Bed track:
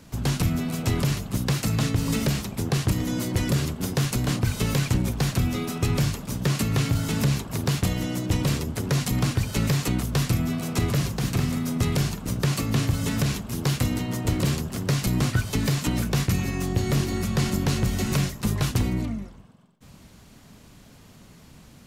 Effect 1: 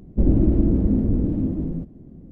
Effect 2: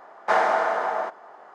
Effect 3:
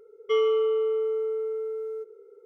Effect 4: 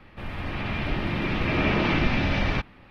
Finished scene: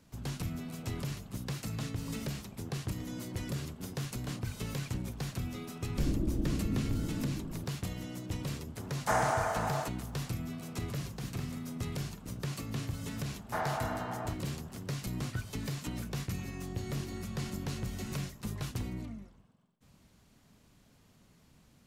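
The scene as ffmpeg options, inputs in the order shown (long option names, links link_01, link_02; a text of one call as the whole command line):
ffmpeg -i bed.wav -i cue0.wav -i cue1.wav -filter_complex "[2:a]asplit=2[link_01][link_02];[0:a]volume=-13.5dB[link_03];[link_01]aexciter=amount=10.5:drive=4.1:freq=6000[link_04];[1:a]atrim=end=2.31,asetpts=PTS-STARTPTS,volume=-14.5dB,afade=type=in:duration=0.004:curve=hsin,afade=type=out:start_time=2.306:duration=0.004:curve=hsin,adelay=5800[link_05];[link_04]atrim=end=1.54,asetpts=PTS-STARTPTS,volume=-9dB,afade=type=in:duration=0.004:curve=hsin,afade=type=out:start_time=1.536:duration=0.004:curve=hsin,adelay=8790[link_06];[link_02]atrim=end=1.54,asetpts=PTS-STARTPTS,volume=-14.5dB,afade=type=in:duration=0.004:curve=hsin,afade=type=out:start_time=1.536:duration=0.004:curve=hsin,adelay=13240[link_07];[link_03][link_05][link_06][link_07]amix=inputs=4:normalize=0" out.wav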